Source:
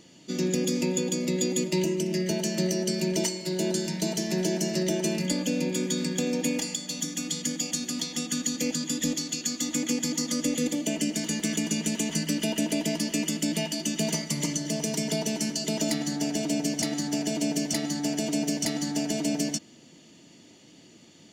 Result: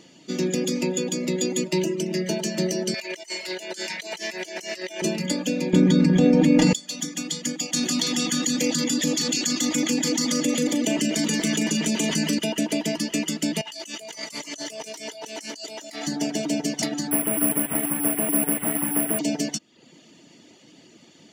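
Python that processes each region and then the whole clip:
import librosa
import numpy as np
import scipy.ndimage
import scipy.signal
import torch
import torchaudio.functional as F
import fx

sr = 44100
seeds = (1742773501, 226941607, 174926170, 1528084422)

y = fx.chain(x, sr, fx.highpass(hz=580.0, slope=12),
    fx.peak_eq(hz=2200.0, db=8.0, octaves=0.87),
    fx.over_compress(threshold_db=-35.0, ratio=-0.5), at=(2.94, 5.02))
y = fx.chain(y, sr, fx.riaa(side='playback'),
    fx.comb(ms=6.7, depth=0.4),
    fx.env_flatten(amount_pct=100), at=(5.73, 6.73))
y = fx.chain(y, sr, fx.echo_single(ms=178, db=-8.5),
    fx.env_flatten(amount_pct=70), at=(7.73, 12.39))
y = fx.chain(y, sr, fx.highpass(hz=540.0, slope=12),
    fx.doubler(ms=18.0, db=-12),
    fx.over_compress(threshold_db=-39.0, ratio=-1.0), at=(13.61, 16.07))
y = fx.chain(y, sr, fx.delta_mod(bps=16000, step_db=-35.5),
    fx.resample_bad(factor=4, down='filtered', up='zero_stuff'), at=(17.11, 19.19))
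y = fx.high_shelf(y, sr, hz=6600.0, db=-7.0)
y = fx.dereverb_blind(y, sr, rt60_s=0.56)
y = fx.low_shelf(y, sr, hz=110.0, db=-11.0)
y = y * librosa.db_to_amplitude(5.0)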